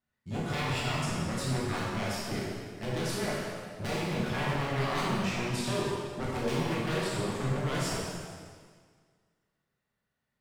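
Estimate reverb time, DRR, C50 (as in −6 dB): 1.8 s, −6.5 dB, −2.0 dB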